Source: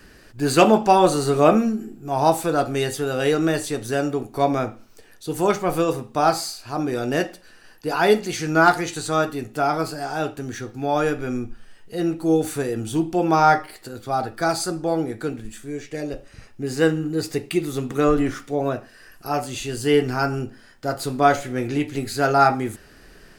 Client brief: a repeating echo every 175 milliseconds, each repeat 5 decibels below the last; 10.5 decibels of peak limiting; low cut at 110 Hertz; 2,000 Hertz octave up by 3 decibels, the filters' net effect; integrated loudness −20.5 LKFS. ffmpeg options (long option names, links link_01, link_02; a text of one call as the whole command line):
ffmpeg -i in.wav -af "highpass=110,equalizer=frequency=2000:width_type=o:gain=4.5,alimiter=limit=-11dB:level=0:latency=1,aecho=1:1:175|350|525|700|875|1050|1225:0.562|0.315|0.176|0.0988|0.0553|0.031|0.0173,volume=2.5dB" out.wav